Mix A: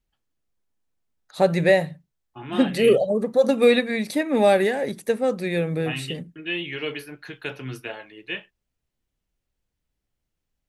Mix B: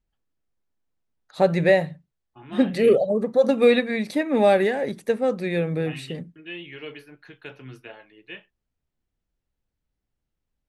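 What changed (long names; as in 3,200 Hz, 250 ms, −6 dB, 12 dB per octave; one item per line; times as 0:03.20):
second voice −7.5 dB
master: add low-pass filter 4,000 Hz 6 dB per octave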